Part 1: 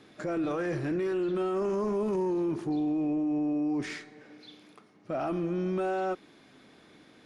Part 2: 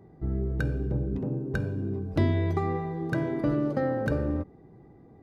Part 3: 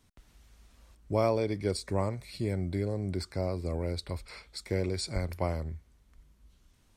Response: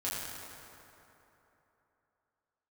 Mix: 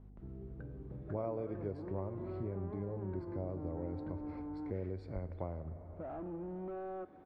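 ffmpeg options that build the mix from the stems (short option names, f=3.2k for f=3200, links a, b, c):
-filter_complex "[0:a]asoftclip=type=tanh:threshold=-32.5dB,adelay=900,volume=-3.5dB,asplit=2[a][b];[b]volume=-19.5dB[c];[1:a]aeval=exprs='val(0)+0.0141*(sin(2*PI*50*n/s)+sin(2*PI*2*50*n/s)/2+sin(2*PI*3*50*n/s)/3+sin(2*PI*4*50*n/s)/4+sin(2*PI*5*50*n/s)/5)':c=same,volume=-15.5dB[d];[2:a]volume=0dB,asplit=2[e][f];[f]volume=-17.5dB[g];[3:a]atrim=start_sample=2205[h];[c][g]amix=inputs=2:normalize=0[i];[i][h]afir=irnorm=-1:irlink=0[j];[a][d][e][j]amix=inputs=4:normalize=0,lowpass=1k,equalizer=f=70:t=o:w=0.55:g=-4.5,acompressor=threshold=-44dB:ratio=2"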